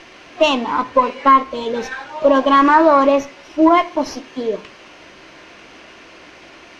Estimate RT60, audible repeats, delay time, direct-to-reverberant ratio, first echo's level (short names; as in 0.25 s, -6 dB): 0.50 s, none, none, 11.5 dB, none